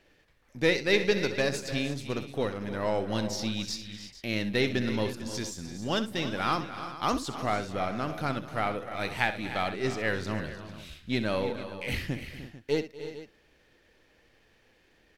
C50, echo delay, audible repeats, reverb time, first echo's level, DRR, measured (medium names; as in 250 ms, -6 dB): no reverb, 64 ms, 5, no reverb, -12.5 dB, no reverb